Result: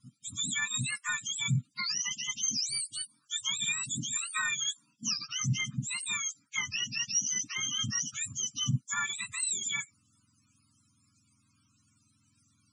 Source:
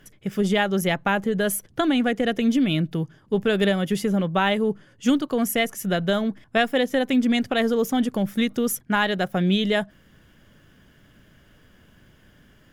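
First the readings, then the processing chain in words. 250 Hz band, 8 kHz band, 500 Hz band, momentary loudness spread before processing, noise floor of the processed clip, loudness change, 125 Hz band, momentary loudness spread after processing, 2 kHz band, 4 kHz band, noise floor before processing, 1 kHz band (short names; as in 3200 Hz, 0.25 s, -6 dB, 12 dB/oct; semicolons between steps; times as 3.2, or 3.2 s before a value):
-23.0 dB, +7.0 dB, under -40 dB, 4 LU, -71 dBFS, -8.5 dB, -7.0 dB, 5 LU, -7.5 dB, -2.5 dB, -57 dBFS, -16.5 dB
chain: spectrum mirrored in octaves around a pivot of 1200 Hz; elliptic band-stop 270–1200 Hz, stop band 70 dB; low shelf 180 Hz -9 dB; downsampling 22050 Hz; loudest bins only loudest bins 64; gain -5 dB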